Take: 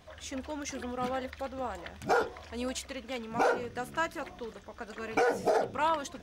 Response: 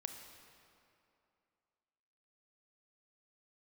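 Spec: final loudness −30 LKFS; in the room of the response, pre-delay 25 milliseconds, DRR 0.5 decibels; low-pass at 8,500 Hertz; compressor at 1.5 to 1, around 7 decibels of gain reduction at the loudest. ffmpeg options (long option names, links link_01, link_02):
-filter_complex "[0:a]lowpass=8500,acompressor=threshold=-42dB:ratio=1.5,asplit=2[link_01][link_02];[1:a]atrim=start_sample=2205,adelay=25[link_03];[link_02][link_03]afir=irnorm=-1:irlink=0,volume=2dB[link_04];[link_01][link_04]amix=inputs=2:normalize=0,volume=6dB"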